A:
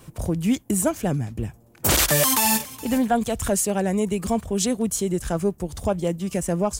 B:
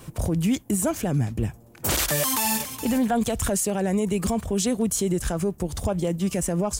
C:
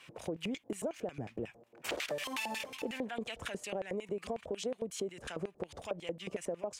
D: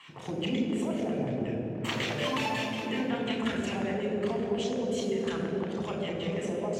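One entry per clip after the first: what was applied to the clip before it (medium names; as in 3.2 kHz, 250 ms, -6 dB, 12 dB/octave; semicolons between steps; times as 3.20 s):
peak limiter -19 dBFS, peak gain reduction 9.5 dB; trim +3.5 dB
LFO band-pass square 5.5 Hz 520–2500 Hz; compression 6:1, threshold -36 dBFS, peak gain reduction 11 dB; trim +2 dB
reverberation RT60 3.5 s, pre-delay 3 ms, DRR -0.5 dB; trim -4.5 dB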